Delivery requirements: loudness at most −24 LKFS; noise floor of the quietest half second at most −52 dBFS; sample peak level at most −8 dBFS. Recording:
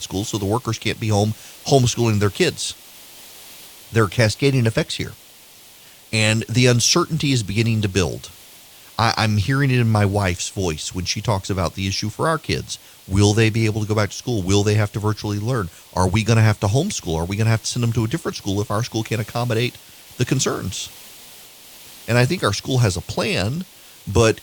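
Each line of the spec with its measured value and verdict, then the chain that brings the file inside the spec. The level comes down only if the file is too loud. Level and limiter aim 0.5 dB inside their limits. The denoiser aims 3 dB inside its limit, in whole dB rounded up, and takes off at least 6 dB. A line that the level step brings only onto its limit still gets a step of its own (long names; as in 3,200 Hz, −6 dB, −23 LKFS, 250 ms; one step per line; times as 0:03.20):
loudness −20.0 LKFS: out of spec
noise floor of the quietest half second −46 dBFS: out of spec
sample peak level −2.0 dBFS: out of spec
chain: broadband denoise 6 dB, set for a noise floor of −46 dBFS
level −4.5 dB
brickwall limiter −8.5 dBFS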